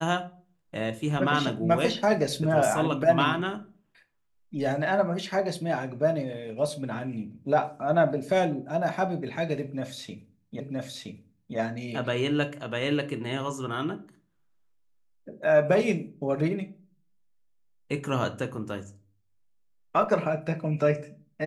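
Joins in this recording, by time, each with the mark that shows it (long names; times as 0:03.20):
0:10.60: the same again, the last 0.97 s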